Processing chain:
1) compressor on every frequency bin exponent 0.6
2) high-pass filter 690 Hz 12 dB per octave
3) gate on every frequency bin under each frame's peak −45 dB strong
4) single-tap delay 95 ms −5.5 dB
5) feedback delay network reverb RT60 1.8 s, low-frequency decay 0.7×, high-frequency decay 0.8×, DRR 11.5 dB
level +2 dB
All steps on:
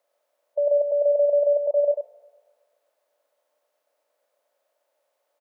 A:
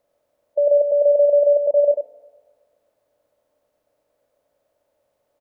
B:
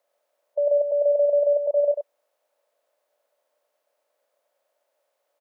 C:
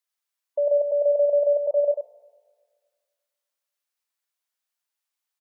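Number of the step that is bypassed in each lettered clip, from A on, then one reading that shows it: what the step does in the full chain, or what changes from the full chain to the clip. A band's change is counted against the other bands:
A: 2, change in integrated loudness +4.5 LU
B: 5, change in momentary loudness spread −3 LU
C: 1, change in momentary loudness spread −3 LU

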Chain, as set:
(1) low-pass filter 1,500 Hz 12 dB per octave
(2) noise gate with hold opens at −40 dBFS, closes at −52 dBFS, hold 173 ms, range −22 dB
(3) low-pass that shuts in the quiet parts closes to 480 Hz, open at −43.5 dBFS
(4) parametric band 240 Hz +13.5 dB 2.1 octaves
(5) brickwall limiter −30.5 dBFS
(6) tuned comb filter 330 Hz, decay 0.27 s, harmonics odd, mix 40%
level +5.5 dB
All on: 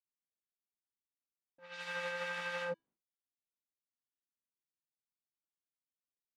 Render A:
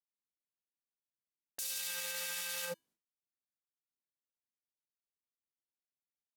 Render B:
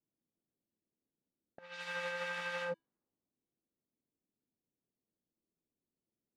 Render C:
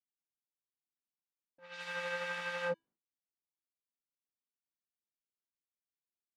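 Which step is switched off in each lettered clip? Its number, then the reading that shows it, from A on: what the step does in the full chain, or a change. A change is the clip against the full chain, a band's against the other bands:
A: 1, 8 kHz band +26.5 dB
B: 2, change in momentary loudness spread +3 LU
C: 5, change in crest factor +3.0 dB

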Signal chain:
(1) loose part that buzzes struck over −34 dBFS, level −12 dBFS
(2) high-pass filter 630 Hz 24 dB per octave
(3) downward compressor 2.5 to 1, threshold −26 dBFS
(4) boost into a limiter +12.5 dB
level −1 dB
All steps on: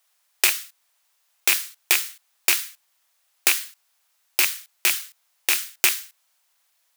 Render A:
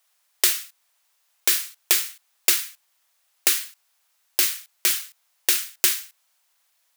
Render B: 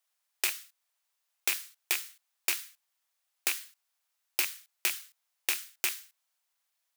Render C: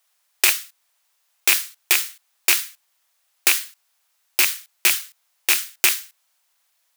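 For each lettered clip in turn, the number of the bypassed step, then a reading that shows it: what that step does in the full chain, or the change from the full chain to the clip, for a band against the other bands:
1, 2 kHz band −5.5 dB
4, change in crest factor +4.0 dB
3, change in momentary loudness spread −1 LU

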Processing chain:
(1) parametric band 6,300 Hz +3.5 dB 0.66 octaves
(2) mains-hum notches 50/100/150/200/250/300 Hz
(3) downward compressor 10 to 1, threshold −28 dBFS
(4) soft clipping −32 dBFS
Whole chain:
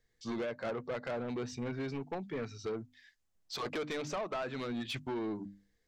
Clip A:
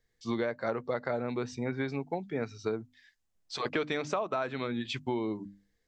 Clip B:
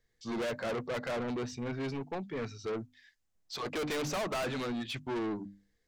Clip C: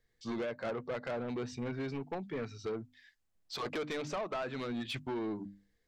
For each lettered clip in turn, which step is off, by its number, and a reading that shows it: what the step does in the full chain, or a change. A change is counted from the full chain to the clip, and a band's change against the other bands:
4, distortion level −9 dB
3, average gain reduction 6.0 dB
1, 8 kHz band −2.5 dB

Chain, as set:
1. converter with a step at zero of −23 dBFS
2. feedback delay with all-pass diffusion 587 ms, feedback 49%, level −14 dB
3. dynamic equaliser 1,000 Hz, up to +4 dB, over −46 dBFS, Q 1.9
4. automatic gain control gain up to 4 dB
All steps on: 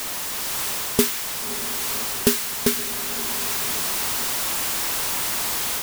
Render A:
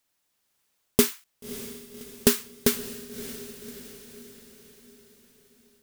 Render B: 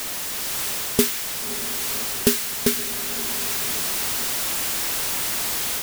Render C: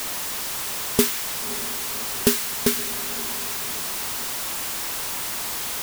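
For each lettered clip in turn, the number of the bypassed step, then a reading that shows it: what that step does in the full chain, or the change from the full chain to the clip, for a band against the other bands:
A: 1, change in crest factor +7.0 dB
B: 3, 1 kHz band −3.0 dB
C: 4, change in crest factor +1.5 dB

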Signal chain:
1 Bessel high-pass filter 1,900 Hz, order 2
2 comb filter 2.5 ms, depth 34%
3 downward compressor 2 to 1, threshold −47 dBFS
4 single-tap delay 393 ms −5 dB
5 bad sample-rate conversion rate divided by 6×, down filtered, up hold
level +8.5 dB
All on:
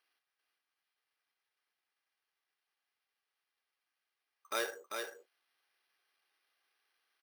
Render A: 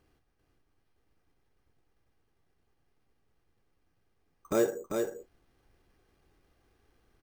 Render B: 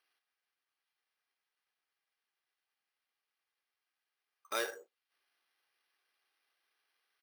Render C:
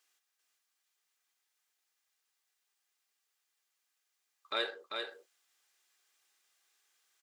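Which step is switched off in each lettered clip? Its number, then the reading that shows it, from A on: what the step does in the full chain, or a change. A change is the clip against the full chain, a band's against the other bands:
1, 250 Hz band +18.0 dB
4, change in integrated loudness +1.5 LU
5, 8 kHz band −18.0 dB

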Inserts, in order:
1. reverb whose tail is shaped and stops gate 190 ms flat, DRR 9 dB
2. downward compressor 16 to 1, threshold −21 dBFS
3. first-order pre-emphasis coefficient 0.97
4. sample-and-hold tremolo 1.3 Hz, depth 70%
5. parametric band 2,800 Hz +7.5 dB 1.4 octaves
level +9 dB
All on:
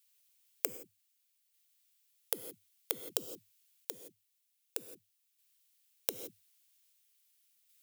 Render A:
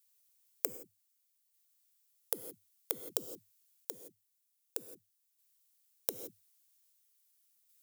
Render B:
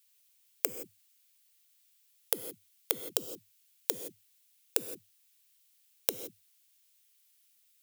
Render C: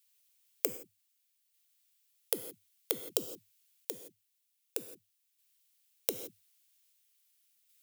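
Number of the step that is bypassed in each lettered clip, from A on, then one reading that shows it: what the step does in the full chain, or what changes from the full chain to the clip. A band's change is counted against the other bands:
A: 5, 2 kHz band −4.5 dB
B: 4, change in momentary loudness spread −3 LU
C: 2, average gain reduction 2.5 dB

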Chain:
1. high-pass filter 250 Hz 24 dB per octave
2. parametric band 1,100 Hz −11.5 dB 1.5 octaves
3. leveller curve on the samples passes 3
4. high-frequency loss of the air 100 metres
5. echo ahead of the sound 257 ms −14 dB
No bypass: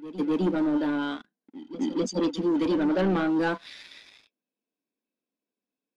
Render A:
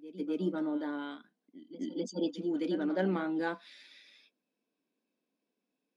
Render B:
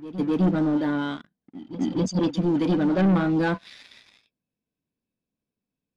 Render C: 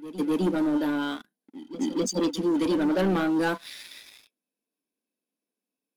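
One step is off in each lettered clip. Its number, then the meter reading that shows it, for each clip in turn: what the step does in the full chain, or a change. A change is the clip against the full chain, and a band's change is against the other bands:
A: 3, change in crest factor +7.0 dB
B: 1, 125 Hz band +8.5 dB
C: 4, 4 kHz band +2.5 dB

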